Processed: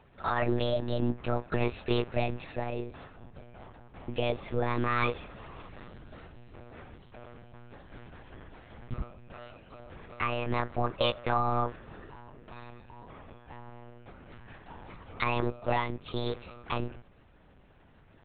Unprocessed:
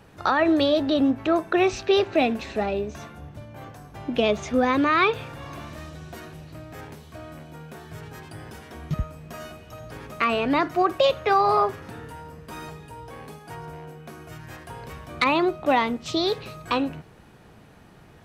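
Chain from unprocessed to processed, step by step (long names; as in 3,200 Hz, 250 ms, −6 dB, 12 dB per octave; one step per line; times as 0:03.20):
one-pitch LPC vocoder at 8 kHz 120 Hz
level −8 dB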